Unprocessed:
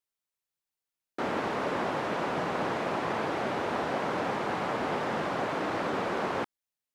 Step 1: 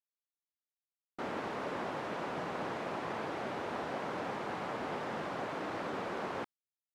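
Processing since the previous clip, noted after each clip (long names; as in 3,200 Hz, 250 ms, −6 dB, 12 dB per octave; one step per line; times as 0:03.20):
noise gate with hold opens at −28 dBFS
level −7.5 dB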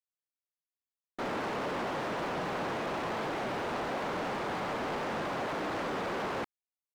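leveller curve on the samples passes 3
level −3.5 dB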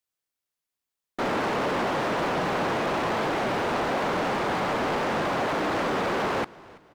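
echo with shifted repeats 332 ms, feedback 38%, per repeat −39 Hz, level −22 dB
level +8 dB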